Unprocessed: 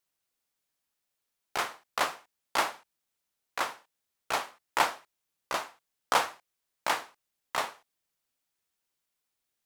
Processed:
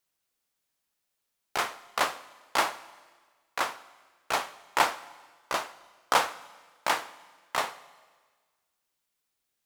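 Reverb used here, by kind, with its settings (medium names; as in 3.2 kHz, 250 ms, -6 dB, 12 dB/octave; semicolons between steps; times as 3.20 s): Schroeder reverb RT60 1.5 s, combs from 33 ms, DRR 17 dB; trim +2 dB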